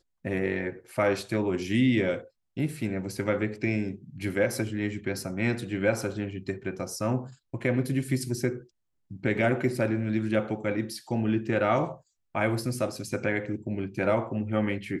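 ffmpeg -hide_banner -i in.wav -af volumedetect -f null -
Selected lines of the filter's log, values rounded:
mean_volume: -28.7 dB
max_volume: -11.5 dB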